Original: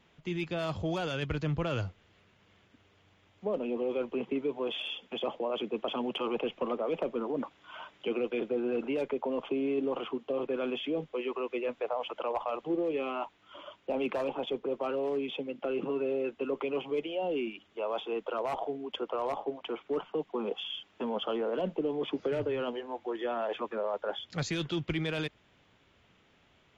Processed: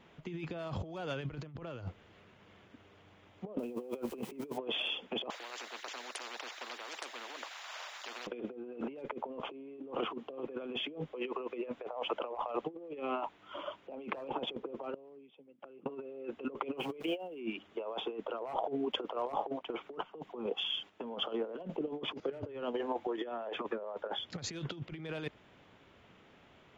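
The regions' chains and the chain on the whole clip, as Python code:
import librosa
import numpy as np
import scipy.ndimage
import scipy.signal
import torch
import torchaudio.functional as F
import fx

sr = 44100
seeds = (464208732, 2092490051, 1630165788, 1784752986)

y = fx.chain(x, sr, fx.crossing_spikes(level_db=-39.5),
    fx.low_shelf(hz=81.0, db=5.0), at=(3.59, 4.58))
y = fx.chain(y, sr, fx.highpass(hz=1100.0, slope=24),
    fx.spectral_comp(ratio=10.0), at=(5.3, 8.27))
y = fx.chain(y, sr, fx.peak_eq(hz=100.0, db=5.5, octaves=2.3),
    fx.gate_flip(shuts_db=-30.0, range_db=-30), at=(14.94, 15.86))
y = fx.chain(y, sr, fx.high_shelf_res(hz=4000.0, db=-11.0, q=1.5),
    fx.sample_gate(floor_db=-50.0), at=(16.77, 17.4))
y = fx.chain(y, sr, fx.high_shelf(hz=5500.0, db=6.0),
    fx.chopper(hz=2.3, depth_pct=60, duty_pct=75), at=(18.83, 23.32))
y = fx.high_shelf(y, sr, hz=2100.0, db=-8.5)
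y = fx.over_compress(y, sr, threshold_db=-38.0, ratio=-0.5)
y = fx.low_shelf(y, sr, hz=120.0, db=-8.0)
y = y * librosa.db_to_amplitude(1.5)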